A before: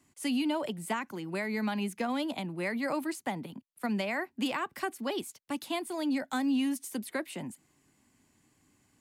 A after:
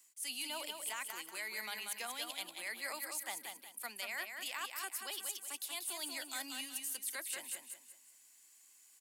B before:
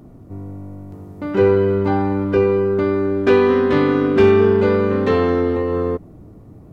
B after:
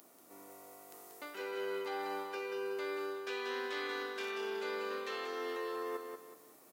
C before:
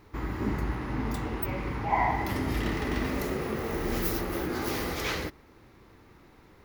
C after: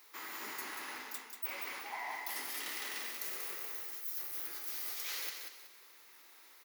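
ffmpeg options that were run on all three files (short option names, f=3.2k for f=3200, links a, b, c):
-af "highpass=330,aderivative,areverse,acompressor=threshold=-47dB:ratio=16,areverse,aecho=1:1:186|372|558|744:0.531|0.181|0.0614|0.0209,volume=9dB"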